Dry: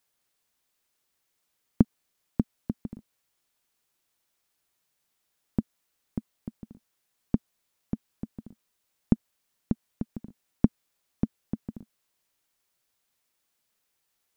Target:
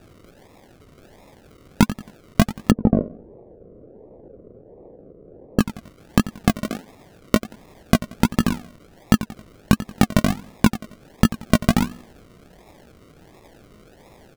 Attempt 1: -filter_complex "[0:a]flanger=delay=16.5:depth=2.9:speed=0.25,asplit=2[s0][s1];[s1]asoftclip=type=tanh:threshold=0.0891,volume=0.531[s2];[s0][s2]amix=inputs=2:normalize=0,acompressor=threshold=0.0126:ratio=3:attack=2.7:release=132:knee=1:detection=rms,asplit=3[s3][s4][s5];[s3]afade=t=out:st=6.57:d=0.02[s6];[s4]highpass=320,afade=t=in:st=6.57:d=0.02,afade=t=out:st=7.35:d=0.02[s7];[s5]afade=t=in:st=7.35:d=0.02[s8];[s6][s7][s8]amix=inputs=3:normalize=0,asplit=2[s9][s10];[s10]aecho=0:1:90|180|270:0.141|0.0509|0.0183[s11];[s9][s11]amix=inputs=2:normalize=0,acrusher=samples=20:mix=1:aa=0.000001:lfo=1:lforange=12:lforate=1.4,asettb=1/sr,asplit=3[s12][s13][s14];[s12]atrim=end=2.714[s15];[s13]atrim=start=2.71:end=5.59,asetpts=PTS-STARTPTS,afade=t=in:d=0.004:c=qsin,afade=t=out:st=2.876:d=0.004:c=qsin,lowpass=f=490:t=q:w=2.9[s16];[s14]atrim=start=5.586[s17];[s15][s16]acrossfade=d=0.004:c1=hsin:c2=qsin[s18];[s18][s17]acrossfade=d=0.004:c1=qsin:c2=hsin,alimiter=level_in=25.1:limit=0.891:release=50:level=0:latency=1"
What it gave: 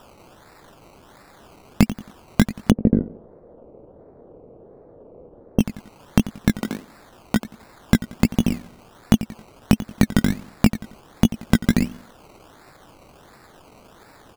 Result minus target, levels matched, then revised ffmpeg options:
saturation: distortion +8 dB; decimation with a swept rate: distortion -7 dB
-filter_complex "[0:a]flanger=delay=16.5:depth=2.9:speed=0.25,asplit=2[s0][s1];[s1]asoftclip=type=tanh:threshold=0.224,volume=0.531[s2];[s0][s2]amix=inputs=2:normalize=0,acompressor=threshold=0.0126:ratio=3:attack=2.7:release=132:knee=1:detection=rms,asplit=3[s3][s4][s5];[s3]afade=t=out:st=6.57:d=0.02[s6];[s4]highpass=320,afade=t=in:st=6.57:d=0.02,afade=t=out:st=7.35:d=0.02[s7];[s5]afade=t=in:st=7.35:d=0.02[s8];[s6][s7][s8]amix=inputs=3:normalize=0,asplit=2[s9][s10];[s10]aecho=0:1:90|180|270:0.141|0.0509|0.0183[s11];[s9][s11]amix=inputs=2:normalize=0,acrusher=samples=41:mix=1:aa=0.000001:lfo=1:lforange=24.6:lforate=1.4,asettb=1/sr,asplit=3[s12][s13][s14];[s12]atrim=end=2.714[s15];[s13]atrim=start=2.71:end=5.59,asetpts=PTS-STARTPTS,afade=t=in:d=0.004:c=qsin,afade=t=out:st=2.876:d=0.004:c=qsin,lowpass=f=490:t=q:w=2.9[s16];[s14]atrim=start=5.586[s17];[s15][s16]acrossfade=d=0.004:c1=hsin:c2=qsin[s18];[s18][s17]acrossfade=d=0.004:c1=qsin:c2=hsin,alimiter=level_in=25.1:limit=0.891:release=50:level=0:latency=1"

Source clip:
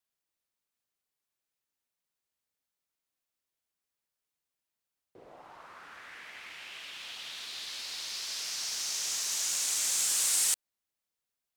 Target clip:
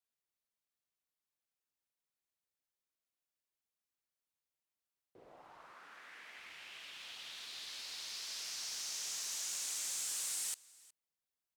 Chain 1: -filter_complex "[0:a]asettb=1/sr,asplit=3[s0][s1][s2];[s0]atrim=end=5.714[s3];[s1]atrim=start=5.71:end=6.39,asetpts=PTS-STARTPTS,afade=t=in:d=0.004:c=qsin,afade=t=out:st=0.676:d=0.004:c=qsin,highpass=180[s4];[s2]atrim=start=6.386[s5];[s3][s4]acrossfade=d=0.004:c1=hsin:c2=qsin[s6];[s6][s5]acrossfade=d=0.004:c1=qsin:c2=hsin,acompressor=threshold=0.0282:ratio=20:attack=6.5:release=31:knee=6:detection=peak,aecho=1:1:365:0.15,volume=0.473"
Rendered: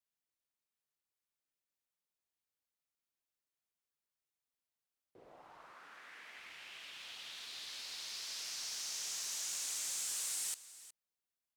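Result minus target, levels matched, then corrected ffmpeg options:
echo-to-direct +6.5 dB
-filter_complex "[0:a]asettb=1/sr,asplit=3[s0][s1][s2];[s0]atrim=end=5.714[s3];[s1]atrim=start=5.71:end=6.39,asetpts=PTS-STARTPTS,afade=t=in:d=0.004:c=qsin,afade=t=out:st=0.676:d=0.004:c=qsin,highpass=180[s4];[s2]atrim=start=6.386[s5];[s3][s4]acrossfade=d=0.004:c1=hsin:c2=qsin[s6];[s6][s5]acrossfade=d=0.004:c1=qsin:c2=hsin,acompressor=threshold=0.0282:ratio=20:attack=6.5:release=31:knee=6:detection=peak,aecho=1:1:365:0.0708,volume=0.473"

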